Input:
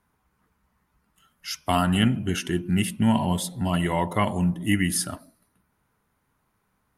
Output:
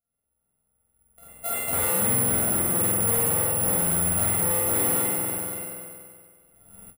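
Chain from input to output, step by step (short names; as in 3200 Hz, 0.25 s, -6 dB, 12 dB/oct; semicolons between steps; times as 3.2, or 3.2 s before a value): sample sorter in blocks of 64 samples; recorder AGC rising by 12 dB/s; gate -51 dBFS, range -17 dB; high shelf 3000 Hz -11 dB; spring tank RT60 1.8 s, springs 47 ms, chirp 60 ms, DRR -9.5 dB; soft clip -18.5 dBFS, distortion -8 dB; careless resampling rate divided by 4×, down filtered, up zero stuff; on a send: tapped delay 0.474/0.523 s -15.5/-13 dB; on the sum: ending taper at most 300 dB/s; gain -8 dB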